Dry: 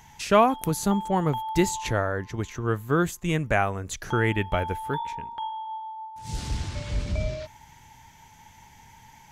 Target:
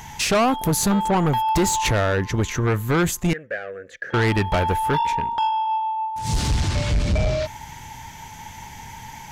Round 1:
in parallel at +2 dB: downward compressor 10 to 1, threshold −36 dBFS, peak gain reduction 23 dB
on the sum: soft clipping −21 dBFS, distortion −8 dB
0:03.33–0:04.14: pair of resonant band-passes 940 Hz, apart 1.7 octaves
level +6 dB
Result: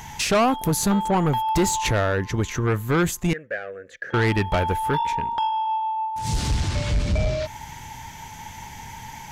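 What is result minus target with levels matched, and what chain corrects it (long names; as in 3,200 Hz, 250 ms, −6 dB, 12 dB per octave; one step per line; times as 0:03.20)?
downward compressor: peak gain reduction +9.5 dB
in parallel at +2 dB: downward compressor 10 to 1, threshold −25.5 dBFS, peak gain reduction 13.5 dB
on the sum: soft clipping −21 dBFS, distortion −7 dB
0:03.33–0:04.14: pair of resonant band-passes 940 Hz, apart 1.7 octaves
level +6 dB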